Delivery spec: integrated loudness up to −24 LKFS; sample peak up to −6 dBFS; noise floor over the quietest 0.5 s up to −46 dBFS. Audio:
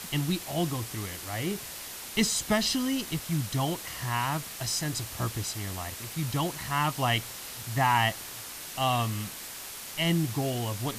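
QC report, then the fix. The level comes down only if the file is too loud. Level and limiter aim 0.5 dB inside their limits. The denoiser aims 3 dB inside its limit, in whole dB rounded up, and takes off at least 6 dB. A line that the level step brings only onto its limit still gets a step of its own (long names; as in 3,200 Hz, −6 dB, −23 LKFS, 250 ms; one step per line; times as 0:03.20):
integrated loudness −30.0 LKFS: in spec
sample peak −12.0 dBFS: in spec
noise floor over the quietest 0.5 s −41 dBFS: out of spec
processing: broadband denoise 8 dB, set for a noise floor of −41 dBFS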